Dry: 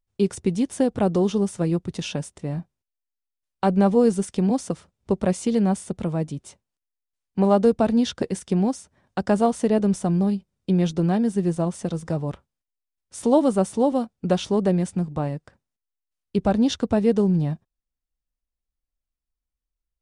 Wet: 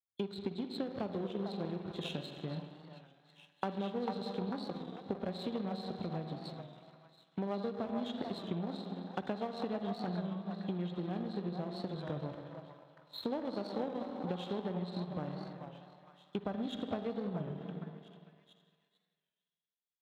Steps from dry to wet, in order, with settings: nonlinear frequency compression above 3200 Hz 4:1; spring tank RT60 2.2 s, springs 45/57 ms, chirp 35 ms, DRR 4.5 dB; compressor 6:1, threshold -26 dBFS, peak gain reduction 14 dB; delay with a stepping band-pass 0.446 s, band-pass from 820 Hz, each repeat 0.7 oct, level -2 dB; power-law curve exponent 1.4; HPF 100 Hz 12 dB/oct; record warp 33 1/3 rpm, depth 100 cents; gain -4.5 dB

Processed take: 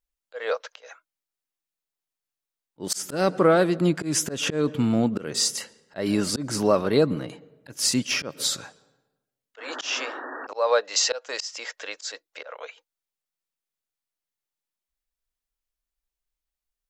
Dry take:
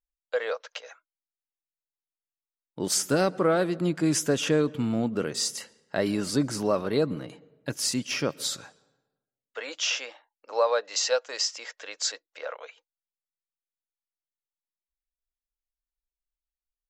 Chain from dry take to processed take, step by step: painted sound noise, 9.58–10.47, 240–1900 Hz -41 dBFS; auto swell 0.185 s; gain +5 dB

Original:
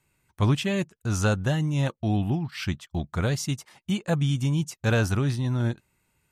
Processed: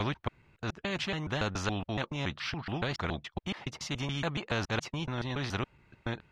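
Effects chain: slices in reverse order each 0.141 s, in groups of 4; air absorption 250 m; spectral compressor 2:1; gain -4.5 dB

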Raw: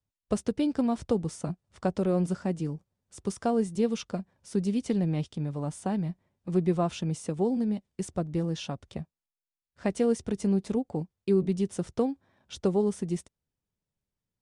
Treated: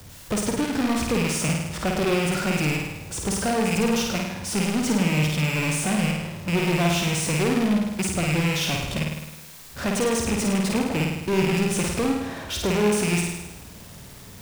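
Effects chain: rattling part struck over -39 dBFS, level -24 dBFS; HPF 49 Hz 6 dB/oct; power-law curve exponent 0.35; flutter echo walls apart 9 m, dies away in 0.97 s; gain -4.5 dB

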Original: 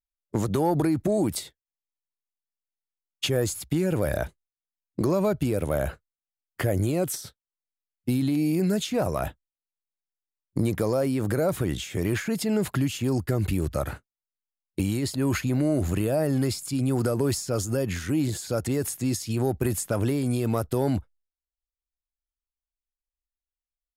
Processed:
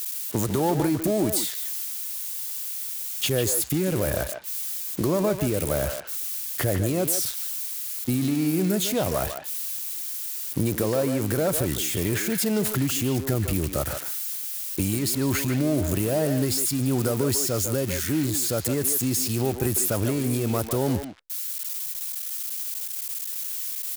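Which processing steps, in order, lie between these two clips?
switching spikes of -21.5 dBFS; speakerphone echo 0.15 s, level -6 dB

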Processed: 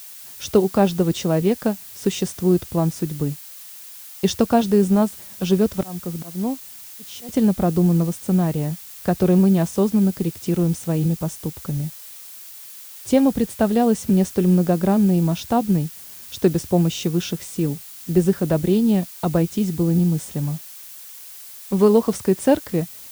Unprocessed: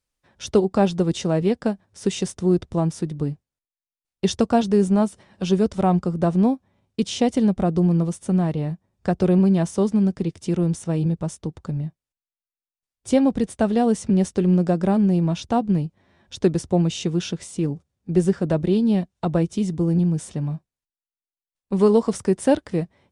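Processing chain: 5.61–7.29 auto swell 0.524 s; added noise blue -41 dBFS; gain +1.5 dB

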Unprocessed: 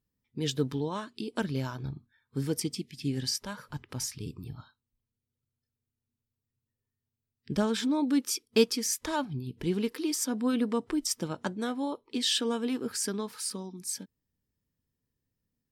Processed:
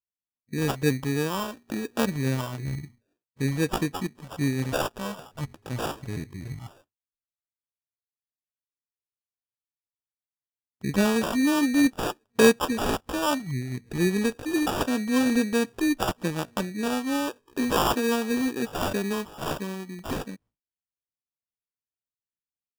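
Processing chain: sample-and-hold 21×; tempo 0.69×; expander -57 dBFS; gain +5 dB

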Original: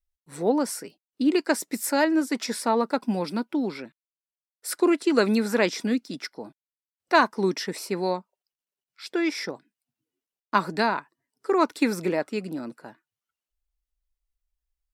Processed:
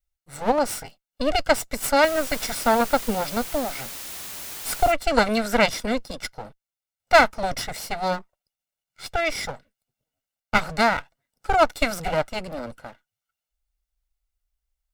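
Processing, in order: minimum comb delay 1.4 ms; 2.03–4.91 added noise white -40 dBFS; gain +4 dB

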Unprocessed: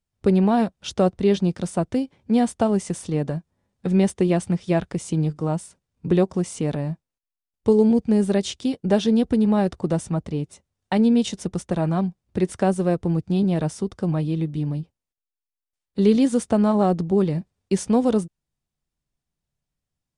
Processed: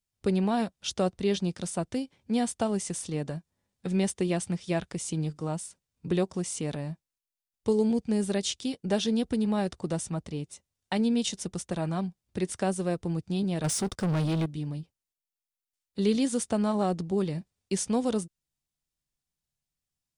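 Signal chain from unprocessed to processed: high shelf 2300 Hz +10.5 dB; 13.64–14.46 sample leveller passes 3; gain -8.5 dB

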